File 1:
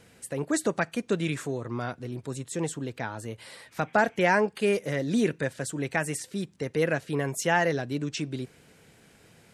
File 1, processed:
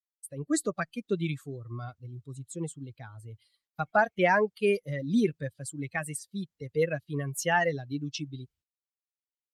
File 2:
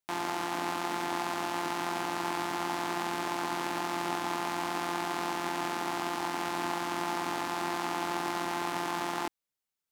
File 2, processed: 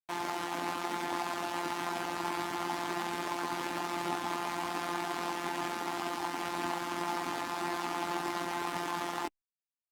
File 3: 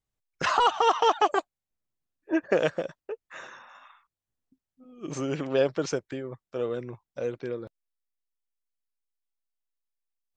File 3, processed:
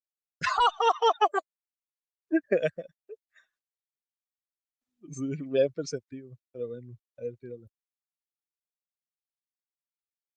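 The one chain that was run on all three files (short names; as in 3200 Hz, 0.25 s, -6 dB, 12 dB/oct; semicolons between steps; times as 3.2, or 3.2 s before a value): per-bin expansion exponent 2; expander -55 dBFS; gain +2 dB; Opus 48 kbps 48000 Hz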